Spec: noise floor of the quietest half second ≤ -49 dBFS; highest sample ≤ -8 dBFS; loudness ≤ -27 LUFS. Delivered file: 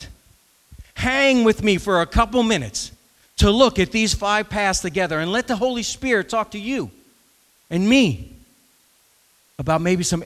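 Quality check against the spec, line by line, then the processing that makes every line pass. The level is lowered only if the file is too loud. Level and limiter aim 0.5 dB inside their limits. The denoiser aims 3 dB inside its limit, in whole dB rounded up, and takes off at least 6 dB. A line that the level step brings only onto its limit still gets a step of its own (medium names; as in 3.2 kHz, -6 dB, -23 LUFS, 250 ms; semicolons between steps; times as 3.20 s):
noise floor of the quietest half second -59 dBFS: pass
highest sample -2.5 dBFS: fail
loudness -19.5 LUFS: fail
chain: trim -8 dB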